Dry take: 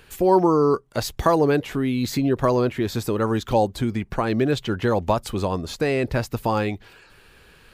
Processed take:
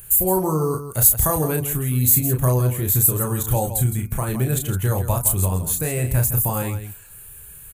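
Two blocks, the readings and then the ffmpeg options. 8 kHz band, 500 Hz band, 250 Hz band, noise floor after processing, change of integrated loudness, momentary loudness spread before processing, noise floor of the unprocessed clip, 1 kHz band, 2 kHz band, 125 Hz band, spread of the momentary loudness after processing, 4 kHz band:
+18.5 dB, −5.0 dB, −4.0 dB, −42 dBFS, +3.0 dB, 8 LU, −53 dBFS, −4.5 dB, −4.0 dB, +7.5 dB, 10 LU, −5.0 dB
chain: -filter_complex "[0:a]lowshelf=frequency=180:width_type=q:width=1.5:gain=10,bandreject=frequency=243.1:width_type=h:width=4,bandreject=frequency=486.2:width_type=h:width=4,bandreject=frequency=729.3:width_type=h:width=4,bandreject=frequency=972.4:width_type=h:width=4,bandreject=frequency=1215.5:width_type=h:width=4,bandreject=frequency=1458.6:width_type=h:width=4,bandreject=frequency=1701.7:width_type=h:width=4,bandreject=frequency=1944.8:width_type=h:width=4,bandreject=frequency=2187.9:width_type=h:width=4,bandreject=frequency=2431:width_type=h:width=4,asplit=2[link_01][link_02];[link_02]aecho=0:1:32.07|163.3:0.562|0.316[link_03];[link_01][link_03]amix=inputs=2:normalize=0,aexciter=amount=14.2:drive=9.6:freq=7700,volume=-5.5dB"

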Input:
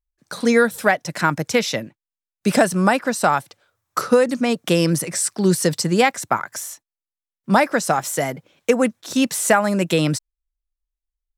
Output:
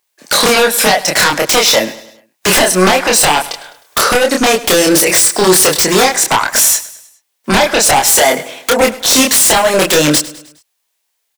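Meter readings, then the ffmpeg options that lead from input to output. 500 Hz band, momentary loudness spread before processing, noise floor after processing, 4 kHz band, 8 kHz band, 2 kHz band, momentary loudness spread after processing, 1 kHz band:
+7.5 dB, 10 LU, −68 dBFS, +16.5 dB, +16.0 dB, +9.5 dB, 8 LU, +8.0 dB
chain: -filter_complex "[0:a]highpass=520,equalizer=frequency=1300:width=5.1:gain=-6.5,acompressor=threshold=-28dB:ratio=10,aeval=exprs='0.282*sin(PI/2*8.91*val(0)/0.282)':channel_layout=same,asplit=2[link_01][link_02];[link_02]adelay=27,volume=-2.5dB[link_03];[link_01][link_03]amix=inputs=2:normalize=0,aecho=1:1:103|206|309|412:0.133|0.064|0.0307|0.0147,volume=3.5dB"

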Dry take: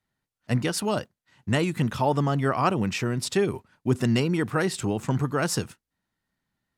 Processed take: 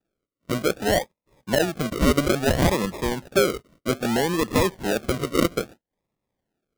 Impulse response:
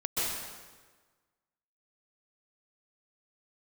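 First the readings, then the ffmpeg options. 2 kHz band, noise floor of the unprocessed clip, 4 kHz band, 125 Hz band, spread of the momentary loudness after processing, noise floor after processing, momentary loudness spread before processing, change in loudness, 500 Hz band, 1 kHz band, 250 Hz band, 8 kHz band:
+3.5 dB, below −85 dBFS, +4.5 dB, −3.0 dB, 8 LU, below −85 dBFS, 6 LU, +2.5 dB, +4.5 dB, +0.5 dB, +1.5 dB, +2.5 dB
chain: -af "highpass=260,equalizer=frequency=280:width_type=q:width=4:gain=-3,equalizer=frequency=540:width_type=q:width=4:gain=7,equalizer=frequency=800:width_type=q:width=4:gain=-4,equalizer=frequency=1300:width_type=q:width=4:gain=7,equalizer=frequency=2000:width_type=q:width=4:gain=-9,lowpass=frequency=2200:width=0.5412,lowpass=frequency=2200:width=1.3066,acrusher=samples=41:mix=1:aa=0.000001:lfo=1:lforange=24.6:lforate=0.61,alimiter=level_in=13dB:limit=-1dB:release=50:level=0:latency=1,volume=-8.5dB"

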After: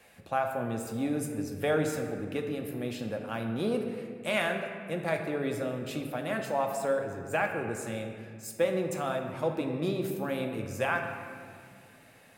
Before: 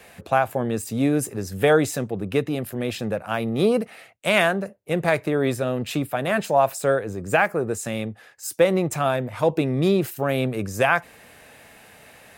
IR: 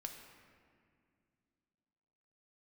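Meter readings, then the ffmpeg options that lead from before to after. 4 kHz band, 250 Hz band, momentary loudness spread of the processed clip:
−9.5 dB, −8.5 dB, 8 LU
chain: -filter_complex "[1:a]atrim=start_sample=2205[link_01];[0:a][link_01]afir=irnorm=-1:irlink=0,volume=-6dB"

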